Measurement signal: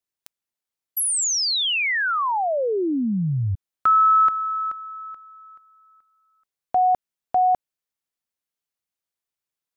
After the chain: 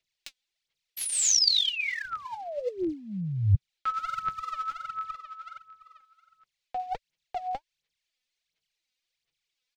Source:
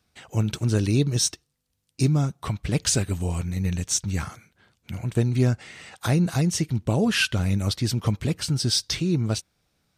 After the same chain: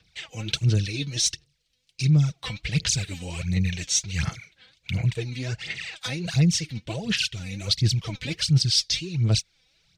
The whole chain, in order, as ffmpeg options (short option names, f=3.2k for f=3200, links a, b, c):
-filter_complex "[0:a]areverse,acompressor=threshold=-28dB:ratio=6:attack=57:release=170:knee=6:detection=peak,areverse,aecho=1:1:6.1:0.34,aphaser=in_gain=1:out_gain=1:delay=4:decay=0.71:speed=1.4:type=sinusoidal,firequalizer=gain_entry='entry(130,0);entry(280,-9);entry(420,-3);entry(1100,-7);entry(2200,8);entry(4000,9);entry(11000,-11)':delay=0.05:min_phase=1,acrossover=split=230|5300[a][b][c];[b]acompressor=threshold=-32dB:ratio=6:attack=88:release=688:knee=2.83:detection=peak[d];[a][d][c]amix=inputs=3:normalize=0"